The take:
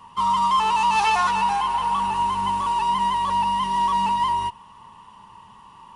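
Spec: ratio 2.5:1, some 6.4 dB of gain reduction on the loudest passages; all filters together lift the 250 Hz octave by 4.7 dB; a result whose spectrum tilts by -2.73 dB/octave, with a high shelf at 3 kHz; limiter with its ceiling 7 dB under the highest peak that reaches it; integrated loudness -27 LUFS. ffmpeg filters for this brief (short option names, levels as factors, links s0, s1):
-af "equalizer=f=250:t=o:g=7,highshelf=f=3000:g=-5,acompressor=threshold=0.0447:ratio=2.5,volume=1.58,alimiter=limit=0.0891:level=0:latency=1"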